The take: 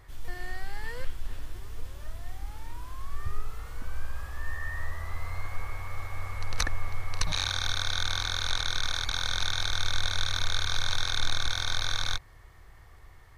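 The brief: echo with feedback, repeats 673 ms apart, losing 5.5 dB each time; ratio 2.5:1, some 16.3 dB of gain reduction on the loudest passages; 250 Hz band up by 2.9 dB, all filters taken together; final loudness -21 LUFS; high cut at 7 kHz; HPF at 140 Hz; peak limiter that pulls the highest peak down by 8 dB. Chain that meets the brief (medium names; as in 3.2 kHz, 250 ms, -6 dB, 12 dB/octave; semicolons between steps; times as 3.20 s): high-pass 140 Hz; low-pass 7 kHz; peaking EQ 250 Hz +5 dB; compression 2.5:1, threshold -52 dBFS; peak limiter -35.5 dBFS; feedback delay 673 ms, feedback 53%, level -5.5 dB; trim +27.5 dB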